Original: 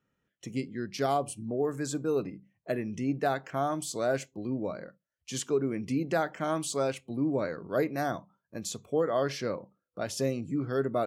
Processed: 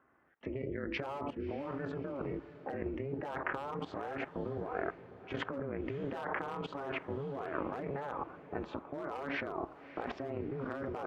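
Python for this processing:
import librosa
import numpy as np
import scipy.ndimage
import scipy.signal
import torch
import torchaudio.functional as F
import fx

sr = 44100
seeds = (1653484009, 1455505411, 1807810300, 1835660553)

y = scipy.signal.sosfilt(scipy.signal.butter(4, 2100.0, 'lowpass', fs=sr, output='sos'), x)
y = fx.peak_eq(y, sr, hz=1000.0, db=11.0, octaves=0.85)
y = np.clip(y, -10.0 ** (-19.5 / 20.0), 10.0 ** (-19.5 / 20.0))
y = fx.level_steps(y, sr, step_db=17)
y = y * np.sin(2.0 * np.pi * 140.0 * np.arange(len(y)) / sr)
y = scipy.signal.sosfilt(scipy.signal.butter(2, 70.0, 'highpass', fs=sr, output='sos'), y)
y = fx.low_shelf(y, sr, hz=97.0, db=-7.5)
y = fx.over_compress(y, sr, threshold_db=-48.0, ratio=-1.0)
y = fx.echo_diffused(y, sr, ms=619, feedback_pct=44, wet_db=-14.5)
y = F.gain(torch.from_numpy(y), 10.0).numpy()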